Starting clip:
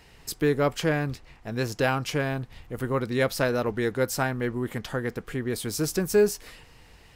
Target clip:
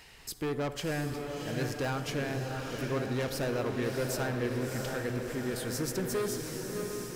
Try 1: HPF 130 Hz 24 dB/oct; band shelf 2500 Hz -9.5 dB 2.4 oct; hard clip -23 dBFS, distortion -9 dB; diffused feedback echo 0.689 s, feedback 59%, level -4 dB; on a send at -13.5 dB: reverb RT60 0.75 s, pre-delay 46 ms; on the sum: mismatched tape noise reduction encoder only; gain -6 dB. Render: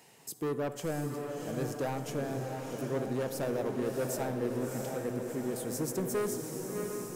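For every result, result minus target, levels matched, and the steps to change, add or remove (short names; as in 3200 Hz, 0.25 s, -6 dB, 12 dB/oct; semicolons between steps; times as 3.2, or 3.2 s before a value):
2000 Hz band -6.0 dB; 125 Hz band -2.0 dB
remove: band shelf 2500 Hz -9.5 dB 2.4 oct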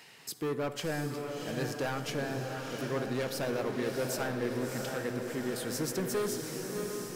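125 Hz band -3.0 dB
remove: HPF 130 Hz 24 dB/oct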